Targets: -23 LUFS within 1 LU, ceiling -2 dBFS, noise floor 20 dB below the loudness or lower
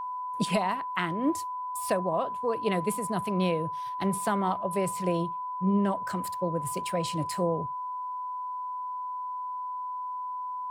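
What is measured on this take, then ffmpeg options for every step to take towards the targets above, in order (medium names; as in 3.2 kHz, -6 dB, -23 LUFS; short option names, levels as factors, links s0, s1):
steady tone 1 kHz; tone level -32 dBFS; loudness -30.5 LUFS; peak level -14.0 dBFS; loudness target -23.0 LUFS
-> -af "bandreject=f=1000:w=30"
-af "volume=2.37"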